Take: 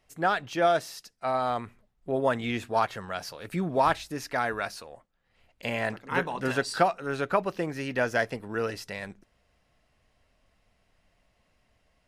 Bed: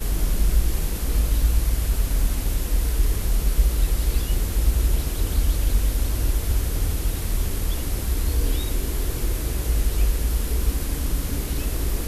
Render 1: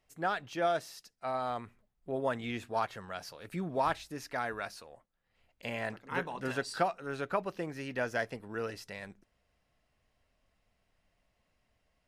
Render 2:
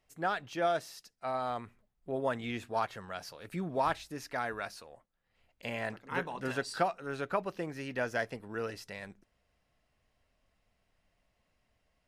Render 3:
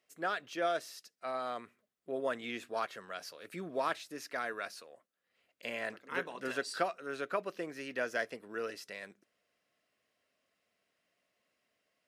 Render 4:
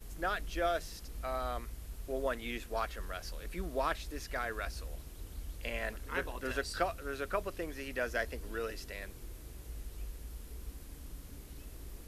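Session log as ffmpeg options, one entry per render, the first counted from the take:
-af "volume=-7dB"
-af anull
-af "highpass=300,equalizer=f=850:w=3.6:g=-10"
-filter_complex "[1:a]volume=-23dB[a];[0:a][a]amix=inputs=2:normalize=0"

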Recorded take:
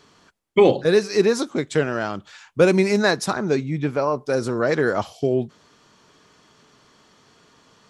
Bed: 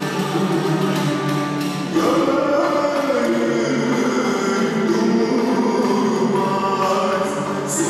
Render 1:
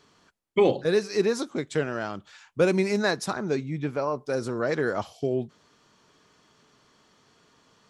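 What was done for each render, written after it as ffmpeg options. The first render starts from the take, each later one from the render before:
-af "volume=-6dB"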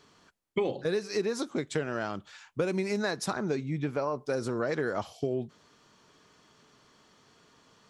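-af "acompressor=threshold=-26dB:ratio=6"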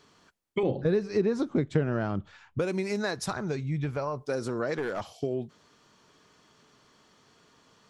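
-filter_complex "[0:a]asettb=1/sr,asplit=3[a][b][c];[a]atrim=end=0.634[d];[b]atrim=start=0.63:end=2.59,asetpts=PTS-STARTPTS,afade=t=in:d=0.004:c=qsin,afade=t=out:st=1.956:d=0.004:c=qsin,aemphasis=mode=reproduction:type=riaa[e];[c]atrim=start=2.586[f];[d][e]acrossfade=d=0.004:c1=hsin:c2=qsin[g];[g][f]acrossfade=d=0.004:c1=qsin:c2=hsin,asplit=3[h][i][j];[h]afade=t=out:st=3.15:d=0.02[k];[i]asubboost=boost=7.5:cutoff=98,afade=t=in:st=3.15:d=0.02,afade=t=out:st=4.22:d=0.02[l];[j]afade=t=in:st=4.22:d=0.02[m];[k][l][m]amix=inputs=3:normalize=0,asettb=1/sr,asplit=3[n][o][p];[n]atrim=end=4.784[q];[o]atrim=start=4.78:end=5.19,asetpts=PTS-STARTPTS,afade=t=in:d=0.004:c=qsin,afade=t=out:st=0.406:d=0.004:c=qsin,aeval=exprs='clip(val(0),-1,0.0447)':c=same[r];[p]atrim=start=5.186[s];[q][r]acrossfade=d=0.004:c1=hsin:c2=qsin[t];[t][s]acrossfade=d=0.004:c1=qsin:c2=hsin"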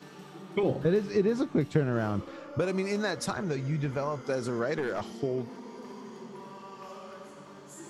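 -filter_complex "[1:a]volume=-26.5dB[a];[0:a][a]amix=inputs=2:normalize=0"

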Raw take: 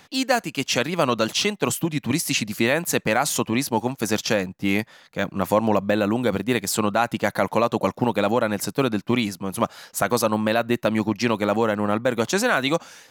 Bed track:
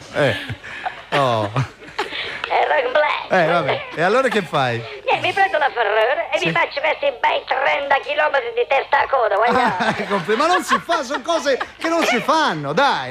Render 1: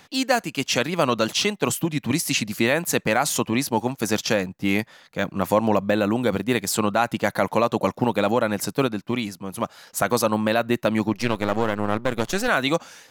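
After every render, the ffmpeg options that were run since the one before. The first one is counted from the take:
-filter_complex "[0:a]asettb=1/sr,asplit=3[a][b][c];[a]atrim=end=11.134[d];[b]atrim=start=11.13:end=12.48,asetpts=PTS-STARTPTS,afade=t=in:d=0.004:c=qsin,afade=t=out:st=1.346:d=0.004:c=qsin,aeval=exprs='if(lt(val(0),0),0.251*val(0),val(0))':c=same[e];[c]atrim=start=12.476[f];[d][e]acrossfade=d=0.004:c1=hsin:c2=qsin[g];[g][f]acrossfade=d=0.004:c1=qsin:c2=hsin,asplit=3[h][i][j];[h]atrim=end=8.872[k];[i]atrim=start=8.868:end=9.872,asetpts=PTS-STARTPTS,volume=-4dB[l];[j]atrim=start=9.868[m];[k][l]acrossfade=d=0.004:c1=hsin:c2=hsin[n];[n][m]acrossfade=d=0.004:c1=hsin:c2=hsin"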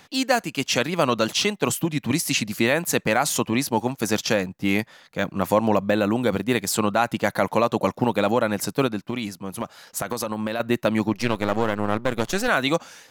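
-filter_complex "[0:a]asettb=1/sr,asplit=3[a][b][c];[a]atrim=end=9.024[d];[b]atrim=start=9.02:end=10.6,asetpts=PTS-STARTPTS,afade=t=in:d=0.004:c=qsin,afade=t=out:st=1.576:d=0.004:c=qsin,acompressor=threshold=-22dB:ratio=6:attack=3.2:release=140:knee=1:detection=peak[e];[c]atrim=start=10.596[f];[d][e]acrossfade=d=0.004:c1=hsin:c2=qsin[g];[g][f]acrossfade=d=0.004:c1=qsin:c2=hsin"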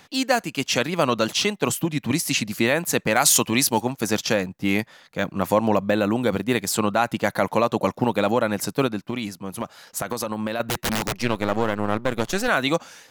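-filter_complex "[0:a]asettb=1/sr,asplit=3[a][b][c];[a]atrim=end=3.164[d];[b]atrim=start=3.16:end=3.81,asetpts=PTS-STARTPTS,afade=t=in:d=0.004:c=qsin,afade=t=out:st=0.646:d=0.004:c=qsin,highshelf=f=2.5k:g=10[e];[c]atrim=start=3.806[f];[d][e]acrossfade=d=0.004:c1=hsin:c2=qsin[g];[g][f]acrossfade=d=0.004:c1=qsin:c2=hsin,asettb=1/sr,asplit=3[h][i][j];[h]atrim=end=10.654[k];[i]atrim=start=10.65:end=11.17,asetpts=PTS-STARTPTS,afade=t=in:d=0.004:c=qsin,afade=t=out:st=0.516:d=0.004:c=qsin,aeval=exprs='(mod(7.94*val(0)+1,2)-1)/7.94':c=same[l];[j]atrim=start=11.166[m];[k][l]acrossfade=d=0.004:c1=hsin:c2=qsin[n];[n][m]acrossfade=d=0.004:c1=qsin:c2=hsin"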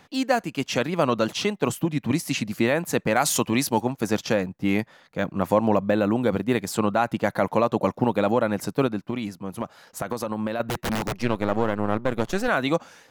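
-af "highshelf=f=2.1k:g=-8.5"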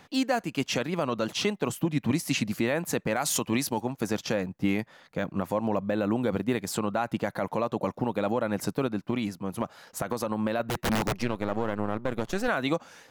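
-af "alimiter=limit=-15.5dB:level=0:latency=1:release=241"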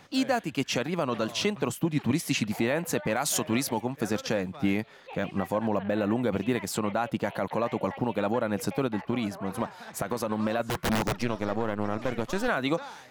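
-filter_complex "[1:a]volume=-26.5dB[a];[0:a][a]amix=inputs=2:normalize=0"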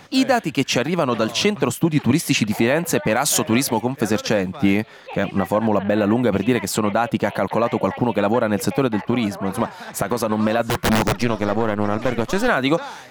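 -af "volume=9dB"

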